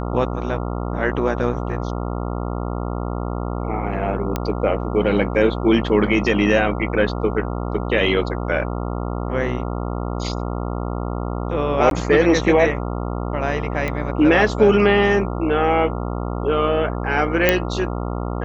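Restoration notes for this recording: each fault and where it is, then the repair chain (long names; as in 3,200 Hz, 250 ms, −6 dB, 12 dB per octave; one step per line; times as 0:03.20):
mains buzz 60 Hz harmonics 23 −25 dBFS
0:04.36: click −8 dBFS
0:11.90–0:11.91: drop-out 12 ms
0:13.88: click −12 dBFS
0:17.49: click 0 dBFS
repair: click removal
hum removal 60 Hz, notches 23
repair the gap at 0:11.90, 12 ms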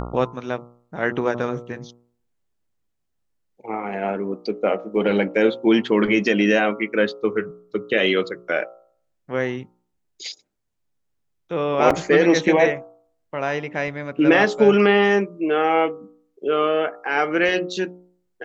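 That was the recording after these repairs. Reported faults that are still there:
none of them is left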